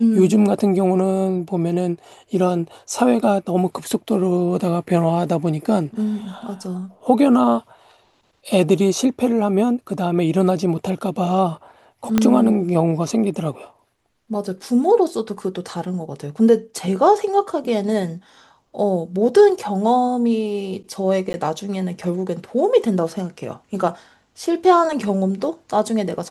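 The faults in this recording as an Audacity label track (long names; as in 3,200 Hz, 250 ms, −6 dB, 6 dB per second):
12.180000	12.180000	click −3 dBFS
21.330000	21.340000	drop-out 10 ms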